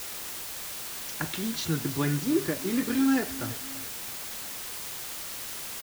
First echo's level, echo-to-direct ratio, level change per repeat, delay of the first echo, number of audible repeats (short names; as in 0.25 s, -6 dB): -17.0 dB, -16.0 dB, -6.5 dB, 0.33 s, 2